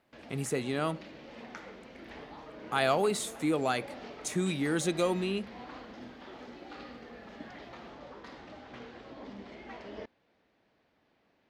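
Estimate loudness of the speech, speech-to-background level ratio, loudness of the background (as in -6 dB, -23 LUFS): -31.5 LUFS, 15.5 dB, -47.0 LUFS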